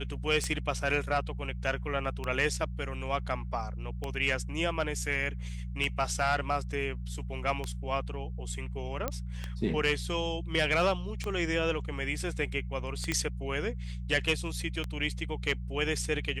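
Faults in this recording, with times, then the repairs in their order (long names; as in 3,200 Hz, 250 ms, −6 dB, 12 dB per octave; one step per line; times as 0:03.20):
mains hum 60 Hz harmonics 3 −37 dBFS
scratch tick 33 1/3 rpm −19 dBFS
0:09.08: click −16 dBFS
0:13.12: click −15 dBFS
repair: click removal
hum removal 60 Hz, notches 3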